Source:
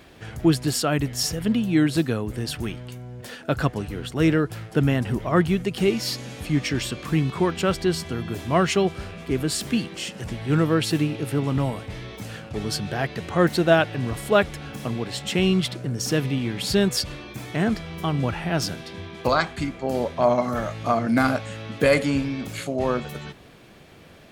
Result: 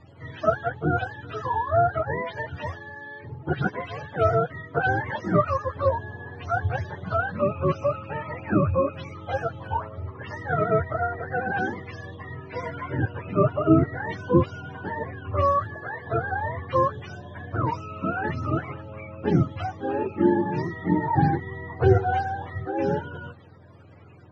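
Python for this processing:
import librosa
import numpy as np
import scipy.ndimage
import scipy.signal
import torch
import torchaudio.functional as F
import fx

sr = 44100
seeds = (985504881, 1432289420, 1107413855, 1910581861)

y = fx.octave_mirror(x, sr, pivot_hz=460.0)
y = scipy.signal.sosfilt(scipy.signal.bessel(2, 3500.0, 'lowpass', norm='mag', fs=sr, output='sos'), y)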